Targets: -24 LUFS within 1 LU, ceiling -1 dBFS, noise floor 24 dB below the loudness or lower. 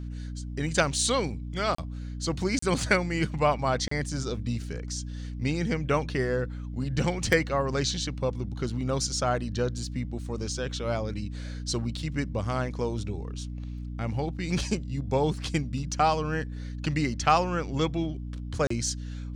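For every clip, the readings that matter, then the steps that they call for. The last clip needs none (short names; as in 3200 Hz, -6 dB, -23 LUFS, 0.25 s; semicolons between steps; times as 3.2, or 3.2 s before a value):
dropouts 4; longest dropout 34 ms; hum 60 Hz; harmonics up to 300 Hz; hum level -33 dBFS; loudness -29.0 LUFS; peak -8.0 dBFS; loudness target -24.0 LUFS
-> interpolate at 1.75/2.59/3.88/18.67, 34 ms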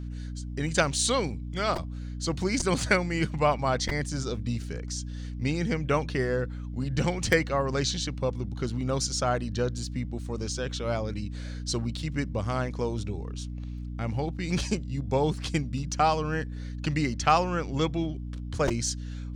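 dropouts 0; hum 60 Hz; harmonics up to 300 Hz; hum level -33 dBFS
-> de-hum 60 Hz, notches 5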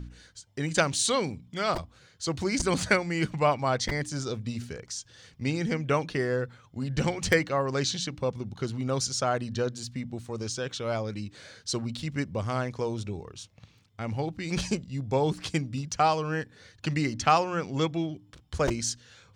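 hum none; loudness -29.5 LUFS; peak -8.0 dBFS; loudness target -24.0 LUFS
-> gain +5.5 dB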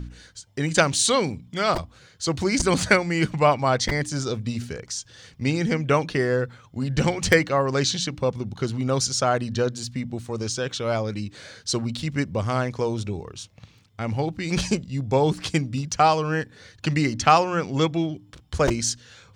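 loudness -24.0 LUFS; peak -2.5 dBFS; noise floor -54 dBFS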